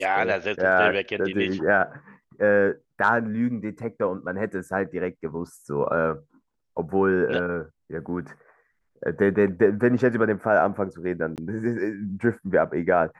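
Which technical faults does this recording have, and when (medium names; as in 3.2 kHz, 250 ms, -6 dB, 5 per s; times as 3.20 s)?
11.36–11.38 s: dropout 18 ms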